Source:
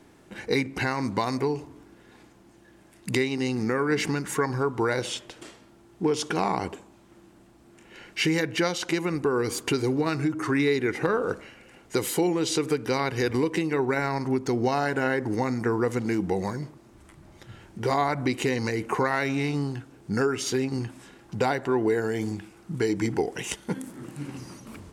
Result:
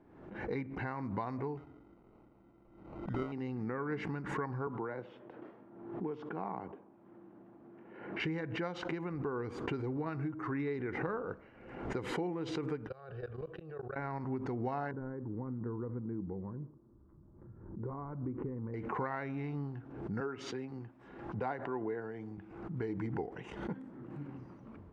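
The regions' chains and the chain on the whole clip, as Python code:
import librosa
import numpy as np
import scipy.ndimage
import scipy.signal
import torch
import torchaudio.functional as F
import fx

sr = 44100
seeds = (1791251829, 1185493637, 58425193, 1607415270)

y = fx.chain(x, sr, fx.lowpass(hz=9600.0, slope=24),
    fx.sample_hold(seeds[0], rate_hz=1700.0, jitter_pct=0), at=(1.57, 3.32))
y = fx.chain(y, sr, fx.highpass(hz=160.0, slope=12),
    fx.spacing_loss(db_at_10k=22),
    fx.band_squash(depth_pct=40), at=(4.67, 8.2))
y = fx.chain(y, sr, fx.level_steps(step_db=23),
    fx.fixed_phaser(hz=1400.0, stages=8), at=(12.87, 13.96))
y = fx.chain(y, sr, fx.cvsd(bps=64000),
    fx.lowpass(hz=1100.0, slope=24),
    fx.peak_eq(hz=730.0, db=-14.5, octaves=0.8), at=(14.91, 18.74))
y = fx.chain(y, sr, fx.low_shelf(hz=170.0, db=-8.5),
    fx.band_widen(depth_pct=40), at=(20.2, 22.38))
y = scipy.signal.sosfilt(scipy.signal.butter(2, 1300.0, 'lowpass', fs=sr, output='sos'), y)
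y = fx.dynamic_eq(y, sr, hz=390.0, q=0.81, threshold_db=-35.0, ratio=4.0, max_db=-5)
y = fx.pre_swell(y, sr, db_per_s=60.0)
y = F.gain(torch.from_numpy(y), -8.5).numpy()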